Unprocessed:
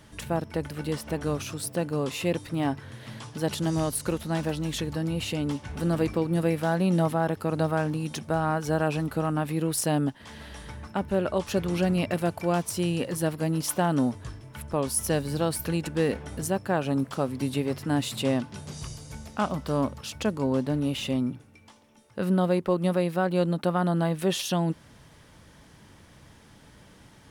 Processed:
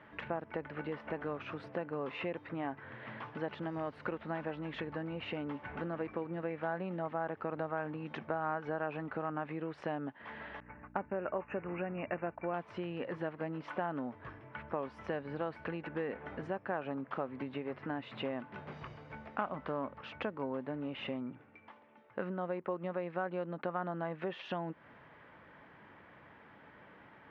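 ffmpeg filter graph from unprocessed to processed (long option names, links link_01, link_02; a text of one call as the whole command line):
ffmpeg -i in.wav -filter_complex "[0:a]asettb=1/sr,asplit=3[link_01][link_02][link_03];[link_01]atrim=end=10.604[link_04];[link_02]atrim=start=10.6:end=12.54,asetpts=PTS-STARTPTS,afade=type=in:duration=0.004:curve=qsin,afade=type=out:start_time=1.936:duration=0.004:curve=qsin,agate=range=-33dB:threshold=-34dB:ratio=3:release=100:detection=peak,aeval=exprs='val(0)+0.00631*(sin(2*PI*60*n/s)+sin(2*PI*2*60*n/s)/2+sin(2*PI*3*60*n/s)/3+sin(2*PI*4*60*n/s)/4+sin(2*PI*5*60*n/s)/5)':channel_layout=same,asuperstop=centerf=4200:order=20:qfactor=1.3[link_05];[link_03]atrim=start=12.536[link_06];[link_04][link_05]acrossfade=duration=0.004:curve1=hsin:curve2=qsin[link_07];[link_07][link_06]acrossfade=duration=0.004:curve1=qsin:curve2=hsin,lowpass=frequency=2200:width=0.5412,lowpass=frequency=2200:width=1.3066,acompressor=threshold=-31dB:ratio=6,highpass=frequency=620:poles=1,volume=2.5dB" out.wav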